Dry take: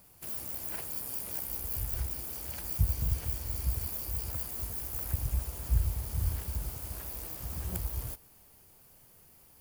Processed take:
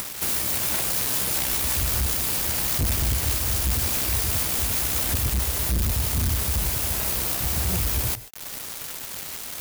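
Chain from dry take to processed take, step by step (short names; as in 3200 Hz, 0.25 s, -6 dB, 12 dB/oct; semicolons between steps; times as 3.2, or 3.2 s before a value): tracing distortion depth 0.22 ms; HPF 52 Hz 12 dB/oct; high shelf 5400 Hz +6 dB; upward compressor, threshold -34 dBFS; companded quantiser 2-bit; on a send: reverb, pre-delay 91 ms, DRR 15.5 dB; on the sum: gain +4 dB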